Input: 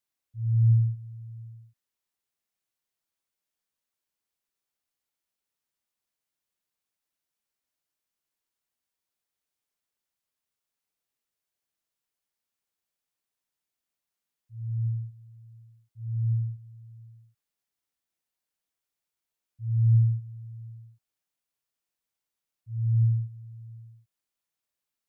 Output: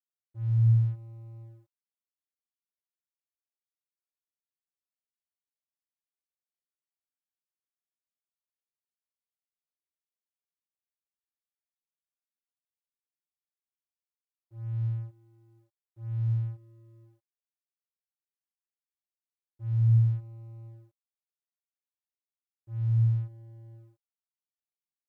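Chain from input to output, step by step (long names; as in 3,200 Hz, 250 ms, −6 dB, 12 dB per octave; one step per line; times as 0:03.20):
comb filter 2.9 ms, depth 34%
dead-zone distortion −52 dBFS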